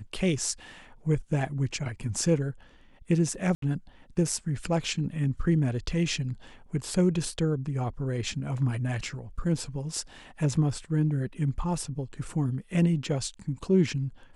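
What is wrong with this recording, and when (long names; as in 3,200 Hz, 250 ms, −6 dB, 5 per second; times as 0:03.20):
0:03.55–0:03.62: drop-out 73 ms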